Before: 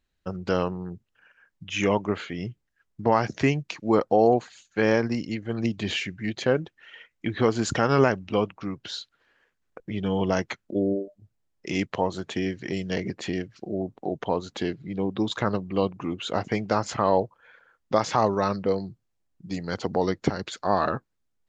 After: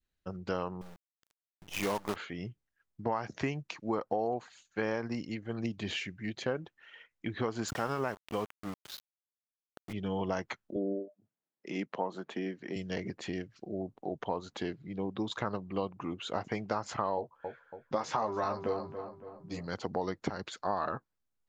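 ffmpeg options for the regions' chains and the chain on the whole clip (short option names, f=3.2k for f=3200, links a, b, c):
-filter_complex "[0:a]asettb=1/sr,asplit=3[a][b][c];[a]atrim=end=0.814[d];[b]atrim=start=0.81:end=2.16,asetpts=PTS-STARTPTS,afade=t=in:d=0.004:c=qsin,afade=t=out:st=1.346:d=0.004:c=qsin,equalizer=f=90:t=o:w=0.74:g=-6,acrusher=bits=5:dc=4:mix=0:aa=0.000001[e];[c]atrim=start=2.156[f];[d][e]acrossfade=d=0.004:c1=hsin:c2=qsin[g];[g][f]acrossfade=d=0.004:c1=qsin:c2=hsin,asettb=1/sr,asplit=3[h][i][j];[h]atrim=end=7.684[k];[i]atrim=start=7.68:end=9.93,asetpts=PTS-STARTPTS,afade=t=in:d=0.004:c=qsin,afade=t=out:st=2.246:d=0.004:c=qsin,tremolo=f=4.9:d=0.36,aeval=exprs='val(0)*gte(abs(val(0)),0.0211)':c=same[l];[j]atrim=start=9.926[m];[k][l]acrossfade=d=0.004:c1=hsin:c2=qsin[n];[n][m]acrossfade=d=0.004:c1=qsin:c2=hsin,asettb=1/sr,asplit=3[o][p][q];[o]atrim=end=10.764[r];[p]atrim=start=10.76:end=12.76,asetpts=PTS-STARTPTS,afade=t=in:d=0.004:c=qsin,afade=t=out:st=1.996:d=0.004:c=qsin,highpass=f=170:w=0.5412,highpass=f=170:w=1.3066,highshelf=f=3.6k:g=-10.5[s];[q]atrim=start=12.756[t];[r][s]acrossfade=d=0.004:c1=hsin:c2=qsin[u];[u][t]acrossfade=d=0.004:c1=qsin:c2=hsin,asettb=1/sr,asplit=3[v][w][x];[v]atrim=end=17.164[y];[w]atrim=start=17.16:end=19.67,asetpts=PTS-STARTPTS,afade=t=in:d=0.004:c=qsin,afade=t=out:st=2.506:d=0.004:c=qsin,asplit=2[z][aa];[aa]adelay=13,volume=-5dB[ab];[z][ab]amix=inputs=2:normalize=0,atrim=end_sample=110691,asplit=2[ac][ad];[ad]adelay=281,lowpass=f=2.3k:p=1,volume=-12dB,asplit=2[ae][af];[af]adelay=281,lowpass=f=2.3k:p=1,volume=0.53,asplit=2[ag][ah];[ah]adelay=281,lowpass=f=2.3k:p=1,volume=0.53,asplit=2[ai][aj];[aj]adelay=281,lowpass=f=2.3k:p=1,volume=0.53,asplit=2[ak][al];[al]adelay=281,lowpass=f=2.3k:p=1,volume=0.53,asplit=2[am][an];[an]adelay=281,lowpass=f=2.3k:p=1,volume=0.53[ao];[ac][ae][ag][ai][ak][am][ao]amix=inputs=7:normalize=0,atrim=end_sample=110691[ap];[x]atrim=start=19.666[aq];[y][ap]acrossfade=d=0.004:c1=hsin:c2=qsin[ar];[ar][aq]acrossfade=d=0.004:c1=qsin:c2=hsin,adynamicequalizer=threshold=0.02:dfrequency=1000:dqfactor=0.94:tfrequency=1000:tqfactor=0.94:attack=5:release=100:ratio=0.375:range=3:mode=boostabove:tftype=bell,acompressor=threshold=-20dB:ratio=6,volume=-8dB"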